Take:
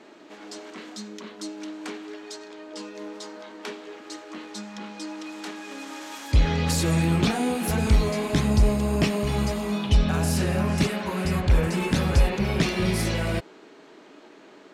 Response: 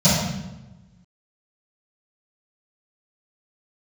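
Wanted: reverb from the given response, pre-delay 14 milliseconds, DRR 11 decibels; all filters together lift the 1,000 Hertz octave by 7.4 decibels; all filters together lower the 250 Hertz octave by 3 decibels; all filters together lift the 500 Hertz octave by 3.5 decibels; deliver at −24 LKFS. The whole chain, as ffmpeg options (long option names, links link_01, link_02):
-filter_complex "[0:a]equalizer=frequency=250:width_type=o:gain=-6,equalizer=frequency=500:width_type=o:gain=4,equalizer=frequency=1000:width_type=o:gain=8.5,asplit=2[link_01][link_02];[1:a]atrim=start_sample=2205,adelay=14[link_03];[link_02][link_03]afir=irnorm=-1:irlink=0,volume=-31.5dB[link_04];[link_01][link_04]amix=inputs=2:normalize=0,volume=-3.5dB"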